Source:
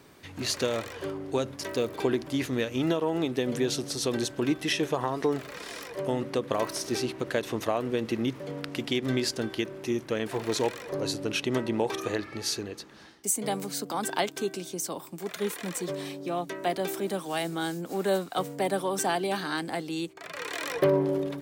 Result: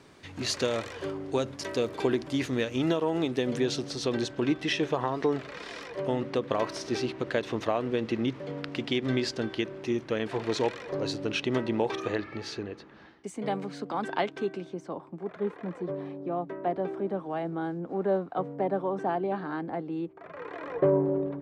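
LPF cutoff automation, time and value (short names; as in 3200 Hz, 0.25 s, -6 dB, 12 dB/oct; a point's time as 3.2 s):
3.36 s 7800 Hz
3.91 s 4600 Hz
11.82 s 4600 Hz
12.76 s 2400 Hz
14.44 s 2400 Hz
15.07 s 1100 Hz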